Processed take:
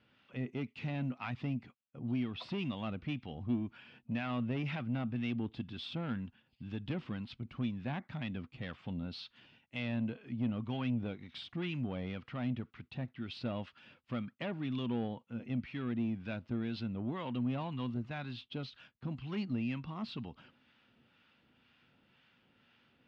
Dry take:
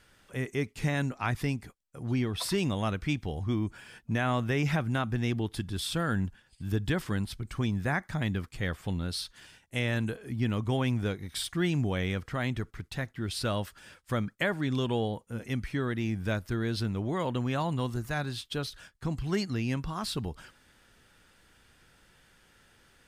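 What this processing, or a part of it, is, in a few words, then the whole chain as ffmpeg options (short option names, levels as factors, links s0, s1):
guitar amplifier with harmonic tremolo: -filter_complex "[0:a]acrossover=split=810[s0][s1];[s0]aeval=exprs='val(0)*(1-0.5/2+0.5/2*cos(2*PI*2*n/s))':c=same[s2];[s1]aeval=exprs='val(0)*(1-0.5/2-0.5/2*cos(2*PI*2*n/s))':c=same[s3];[s2][s3]amix=inputs=2:normalize=0,asoftclip=type=tanh:threshold=0.0398,highpass=110,equalizer=f=130:t=q:w=4:g=4,equalizer=f=240:t=q:w=4:g=9,equalizer=f=420:t=q:w=4:g=-3,equalizer=f=1700:t=q:w=4:g=-5,equalizer=f=2700:t=q:w=4:g=6,lowpass=f=3900:w=0.5412,lowpass=f=3900:w=1.3066,volume=0.596"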